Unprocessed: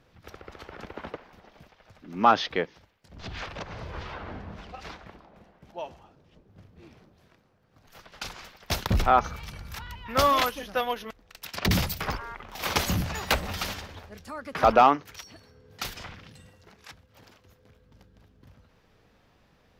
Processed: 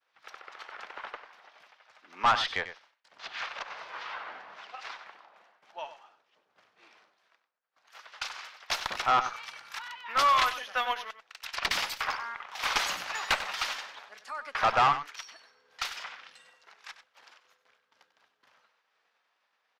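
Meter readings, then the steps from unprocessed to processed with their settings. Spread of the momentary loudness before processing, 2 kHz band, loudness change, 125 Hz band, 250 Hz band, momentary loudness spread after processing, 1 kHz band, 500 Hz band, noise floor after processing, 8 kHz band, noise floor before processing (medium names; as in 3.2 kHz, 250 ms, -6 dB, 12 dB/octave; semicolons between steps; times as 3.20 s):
22 LU, +1.5 dB, -3.5 dB, -18.0 dB, -17.5 dB, 21 LU, -3.0 dB, -10.5 dB, -76 dBFS, -2.5 dB, -63 dBFS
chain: expander -54 dBFS; Chebyshev high-pass 1.1 kHz, order 2; valve stage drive 21 dB, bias 0.3; distance through air 54 m; delay 95 ms -12 dB; trim +4 dB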